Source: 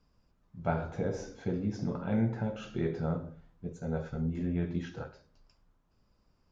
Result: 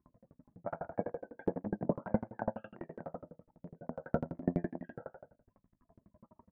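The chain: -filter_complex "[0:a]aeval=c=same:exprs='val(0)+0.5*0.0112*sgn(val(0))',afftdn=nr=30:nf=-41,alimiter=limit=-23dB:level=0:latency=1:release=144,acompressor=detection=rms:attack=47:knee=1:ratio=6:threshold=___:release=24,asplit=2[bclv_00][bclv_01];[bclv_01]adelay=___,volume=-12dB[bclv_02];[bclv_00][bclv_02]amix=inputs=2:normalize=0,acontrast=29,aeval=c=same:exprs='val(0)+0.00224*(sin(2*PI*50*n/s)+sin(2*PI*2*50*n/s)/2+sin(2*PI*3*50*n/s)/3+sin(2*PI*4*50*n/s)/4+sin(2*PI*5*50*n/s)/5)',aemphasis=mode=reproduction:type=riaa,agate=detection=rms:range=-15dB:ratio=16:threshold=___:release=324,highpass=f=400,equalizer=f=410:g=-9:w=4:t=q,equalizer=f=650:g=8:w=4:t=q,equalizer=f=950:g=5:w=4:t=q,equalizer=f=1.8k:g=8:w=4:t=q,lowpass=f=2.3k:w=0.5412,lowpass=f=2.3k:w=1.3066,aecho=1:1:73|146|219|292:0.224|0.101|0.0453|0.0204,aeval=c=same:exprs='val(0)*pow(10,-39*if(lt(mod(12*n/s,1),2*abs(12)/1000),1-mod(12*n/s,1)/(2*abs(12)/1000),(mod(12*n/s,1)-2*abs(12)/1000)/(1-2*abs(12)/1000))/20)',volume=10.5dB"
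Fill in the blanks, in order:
-36dB, 29, -16dB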